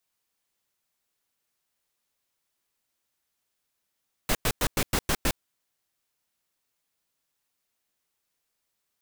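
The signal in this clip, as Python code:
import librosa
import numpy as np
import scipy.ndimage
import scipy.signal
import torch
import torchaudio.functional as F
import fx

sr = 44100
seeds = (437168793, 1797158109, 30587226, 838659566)

y = fx.noise_burst(sr, seeds[0], colour='pink', on_s=0.06, off_s=0.1, bursts=7, level_db=-24.0)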